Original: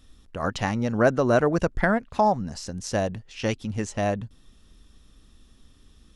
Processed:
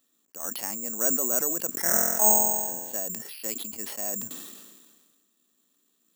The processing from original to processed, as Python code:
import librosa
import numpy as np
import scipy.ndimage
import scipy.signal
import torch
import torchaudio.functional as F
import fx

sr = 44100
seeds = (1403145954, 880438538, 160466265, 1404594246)

y = scipy.signal.sosfilt(scipy.signal.butter(4, 230.0, 'highpass', fs=sr, output='sos'), x)
y = fx.room_flutter(y, sr, wall_m=4.0, rt60_s=1.3, at=(1.71, 2.96))
y = (np.kron(scipy.signal.resample_poly(y, 1, 6), np.eye(6)[0]) * 6)[:len(y)]
y = fx.sustainer(y, sr, db_per_s=35.0)
y = y * 10.0 ** (-14.0 / 20.0)